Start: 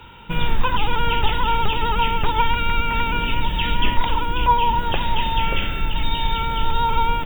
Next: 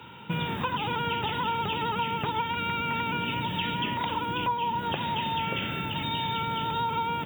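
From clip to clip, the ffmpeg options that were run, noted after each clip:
ffmpeg -i in.wav -af "highpass=frequency=110:width=0.5412,highpass=frequency=110:width=1.3066,equalizer=frequency=150:width_type=o:width=2.5:gain=4,acompressor=threshold=-23dB:ratio=5,volume=-3dB" out.wav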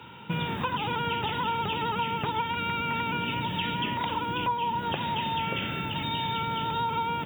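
ffmpeg -i in.wav -af "highshelf=frequency=8800:gain=-4" out.wav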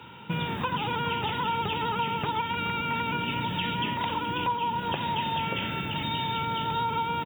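ffmpeg -i in.wav -af "aecho=1:1:422:0.266" out.wav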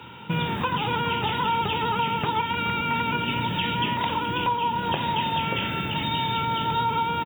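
ffmpeg -i in.wav -filter_complex "[0:a]asplit=2[link_01][link_02];[link_02]adelay=25,volume=-12dB[link_03];[link_01][link_03]amix=inputs=2:normalize=0,volume=3.5dB" out.wav

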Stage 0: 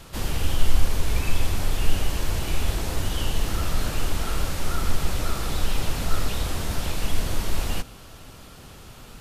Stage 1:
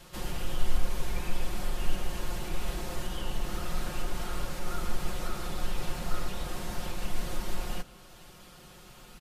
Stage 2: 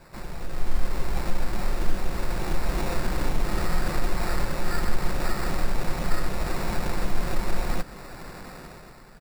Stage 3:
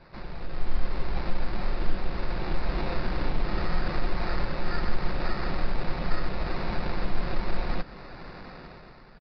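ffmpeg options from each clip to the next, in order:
ffmpeg -i in.wav -filter_complex "[0:a]lowshelf=frequency=210:gain=-4,aecho=1:1:5.6:0.7,acrossover=split=1800[link_01][link_02];[link_02]alimiter=level_in=5dB:limit=-24dB:level=0:latency=1:release=443,volume=-5dB[link_03];[link_01][link_03]amix=inputs=2:normalize=0,volume=-7dB" out.wav
ffmpeg -i in.wav -filter_complex "[0:a]asplit=2[link_01][link_02];[link_02]acompressor=threshold=-35dB:ratio=6,volume=1.5dB[link_03];[link_01][link_03]amix=inputs=2:normalize=0,acrusher=samples=14:mix=1:aa=0.000001,dynaudnorm=framelen=110:gausssize=11:maxgain=11dB,volume=-6dB" out.wav
ffmpeg -i in.wav -af "aresample=11025,aresample=44100,volume=-2dB" out.wav

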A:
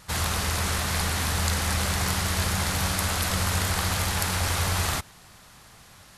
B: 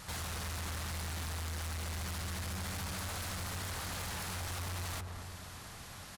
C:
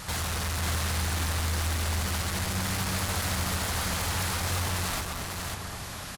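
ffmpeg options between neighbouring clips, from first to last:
ffmpeg -i in.wav -filter_complex "[0:a]acompressor=threshold=-37dB:ratio=3,asplit=2[link_01][link_02];[link_02]adelay=223,lowpass=frequency=1000:poles=1,volume=-8dB,asplit=2[link_03][link_04];[link_04]adelay=223,lowpass=frequency=1000:poles=1,volume=0.49,asplit=2[link_05][link_06];[link_06]adelay=223,lowpass=frequency=1000:poles=1,volume=0.49,asplit=2[link_07][link_08];[link_08]adelay=223,lowpass=frequency=1000:poles=1,volume=0.49,asplit=2[link_09][link_10];[link_10]adelay=223,lowpass=frequency=1000:poles=1,volume=0.49,asplit=2[link_11][link_12];[link_12]adelay=223,lowpass=frequency=1000:poles=1,volume=0.49[link_13];[link_01][link_03][link_05][link_07][link_09][link_11][link_13]amix=inputs=7:normalize=0,asoftclip=type=tanh:threshold=-38.5dB,volume=2dB" out.wav
ffmpeg -i in.wav -af "aecho=1:1:542:0.631,volume=9dB" out.wav

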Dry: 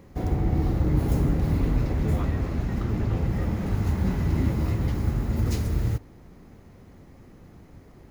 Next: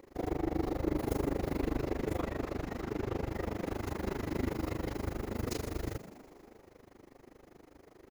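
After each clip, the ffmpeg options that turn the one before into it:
ffmpeg -i in.wav -filter_complex "[0:a]lowshelf=frequency=240:width_type=q:width=1.5:gain=-10.5,tremolo=f=25:d=0.974,asplit=8[link_01][link_02][link_03][link_04][link_05][link_06][link_07][link_08];[link_02]adelay=122,afreqshift=73,volume=-15dB[link_09];[link_03]adelay=244,afreqshift=146,volume=-18.9dB[link_10];[link_04]adelay=366,afreqshift=219,volume=-22.8dB[link_11];[link_05]adelay=488,afreqshift=292,volume=-26.6dB[link_12];[link_06]adelay=610,afreqshift=365,volume=-30.5dB[link_13];[link_07]adelay=732,afreqshift=438,volume=-34.4dB[link_14];[link_08]adelay=854,afreqshift=511,volume=-38.3dB[link_15];[link_01][link_09][link_10][link_11][link_12][link_13][link_14][link_15]amix=inputs=8:normalize=0" out.wav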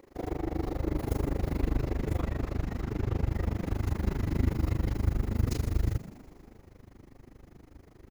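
ffmpeg -i in.wav -af "asubboost=boost=4.5:cutoff=200" out.wav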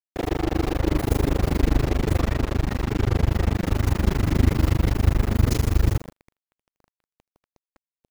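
ffmpeg -i in.wav -af "acrusher=bits=5:mix=0:aa=0.5,volume=8.5dB" out.wav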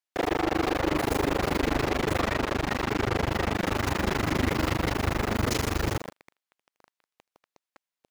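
ffmpeg -i in.wav -filter_complex "[0:a]asplit=2[link_01][link_02];[link_02]highpass=frequency=720:poles=1,volume=23dB,asoftclip=type=tanh:threshold=-5dB[link_03];[link_01][link_03]amix=inputs=2:normalize=0,lowpass=frequency=4900:poles=1,volume=-6dB,volume=-9dB" out.wav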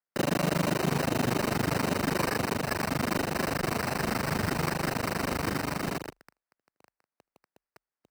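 ffmpeg -i in.wav -af "bandreject=frequency=50:width_type=h:width=6,bandreject=frequency=100:width_type=h:width=6,bandreject=frequency=150:width_type=h:width=6,bandreject=frequency=200:width_type=h:width=6,highpass=frequency=270:width_type=q:width=0.5412,highpass=frequency=270:width_type=q:width=1.307,lowpass=frequency=2500:width_type=q:width=0.5176,lowpass=frequency=2500:width_type=q:width=0.7071,lowpass=frequency=2500:width_type=q:width=1.932,afreqshift=-160,acrusher=samples=13:mix=1:aa=0.000001" out.wav

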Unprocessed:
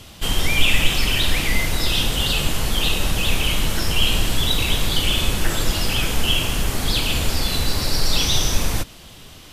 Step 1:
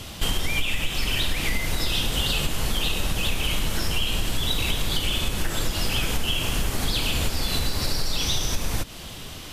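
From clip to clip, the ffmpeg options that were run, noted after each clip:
ffmpeg -i in.wav -af "acompressor=threshold=-24dB:ratio=10,volume=4.5dB" out.wav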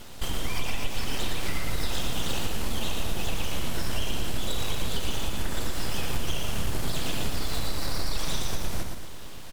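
ffmpeg -i in.wav -filter_complex "[0:a]aeval=exprs='abs(val(0))':channel_layout=same,aecho=1:1:116|232|348|464|580|696:0.562|0.264|0.124|0.0584|0.0274|0.0129,asplit=2[link_01][link_02];[link_02]acrusher=samples=13:mix=1:aa=0.000001,volume=-5dB[link_03];[link_01][link_03]amix=inputs=2:normalize=0,volume=-7.5dB" out.wav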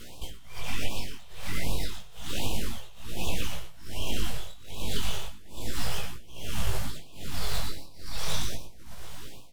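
ffmpeg -i in.wav -af "tremolo=f=1.2:d=0.94,flanger=delay=17:depth=4.9:speed=0.32,afftfilt=real='re*(1-between(b*sr/1024,240*pow(1700/240,0.5+0.5*sin(2*PI*1.3*pts/sr))/1.41,240*pow(1700/240,0.5+0.5*sin(2*PI*1.3*pts/sr))*1.41))':imag='im*(1-between(b*sr/1024,240*pow(1700/240,0.5+0.5*sin(2*PI*1.3*pts/sr))/1.41,240*pow(1700/240,0.5+0.5*sin(2*PI*1.3*pts/sr))*1.41))':win_size=1024:overlap=0.75,volume=3.5dB" out.wav

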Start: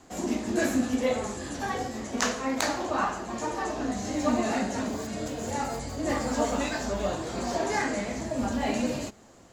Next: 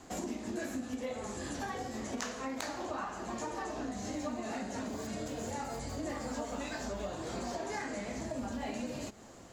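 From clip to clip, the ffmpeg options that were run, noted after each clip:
ffmpeg -i in.wav -af "acompressor=threshold=-37dB:ratio=6,volume=1dB" out.wav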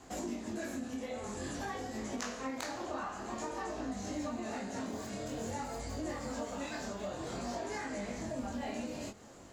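ffmpeg -i in.wav -af "flanger=delay=19:depth=7.2:speed=0.51,volume=2dB" out.wav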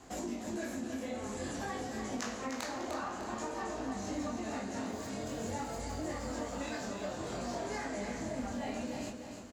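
ffmpeg -i in.wav -af "aecho=1:1:301|602|903|1204|1505:0.447|0.179|0.0715|0.0286|0.0114" out.wav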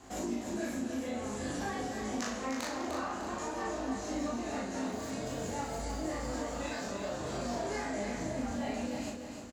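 ffmpeg -i in.wav -filter_complex "[0:a]asplit=2[link_01][link_02];[link_02]adelay=38,volume=-2.5dB[link_03];[link_01][link_03]amix=inputs=2:normalize=0" out.wav

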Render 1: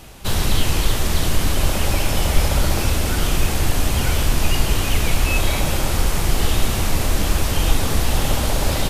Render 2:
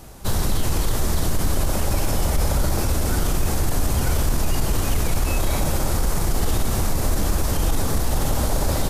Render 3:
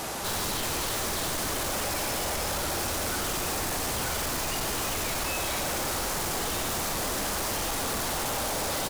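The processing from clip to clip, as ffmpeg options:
ffmpeg -i in.wav -af "equalizer=frequency=2800:width_type=o:width=1.2:gain=-9.5,alimiter=limit=-11.5dB:level=0:latency=1:release=24" out.wav
ffmpeg -i in.wav -filter_complex "[0:a]aecho=1:1:93:0.335,asplit=2[link_01][link_02];[link_02]highpass=frequency=720:poles=1,volume=31dB,asoftclip=type=tanh:threshold=-8dB[link_03];[link_01][link_03]amix=inputs=2:normalize=0,lowpass=frequency=6300:poles=1,volume=-6dB,asoftclip=type=tanh:threshold=-22dB,volume=-6.5dB" out.wav

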